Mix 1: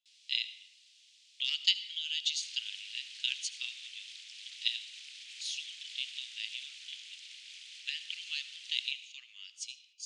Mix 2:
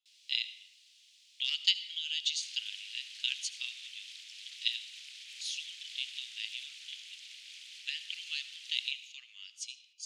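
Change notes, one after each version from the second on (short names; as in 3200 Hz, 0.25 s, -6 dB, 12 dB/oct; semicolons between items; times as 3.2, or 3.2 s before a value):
master: remove steep low-pass 9900 Hz 36 dB/oct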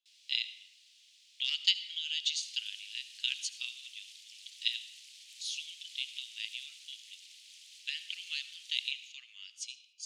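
second sound: add differentiator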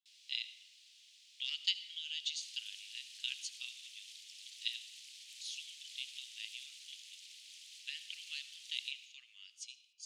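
speech -6.5 dB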